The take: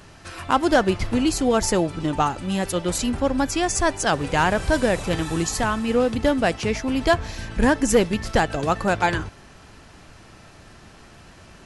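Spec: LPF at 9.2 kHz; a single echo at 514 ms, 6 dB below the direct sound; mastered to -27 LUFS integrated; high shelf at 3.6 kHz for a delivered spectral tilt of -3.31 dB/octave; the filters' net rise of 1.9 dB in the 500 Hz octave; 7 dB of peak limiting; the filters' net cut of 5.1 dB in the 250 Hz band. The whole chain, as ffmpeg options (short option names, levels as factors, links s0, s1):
-af "lowpass=9200,equalizer=f=250:t=o:g=-8,equalizer=f=500:t=o:g=4,highshelf=f=3600:g=7,alimiter=limit=0.251:level=0:latency=1,aecho=1:1:514:0.501,volume=0.596"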